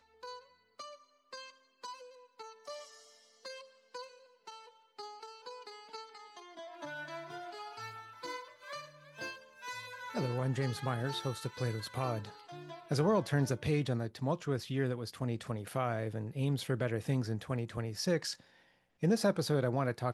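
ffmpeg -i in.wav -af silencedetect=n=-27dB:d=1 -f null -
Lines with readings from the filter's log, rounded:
silence_start: 0.00
silence_end: 10.17 | silence_duration: 10.17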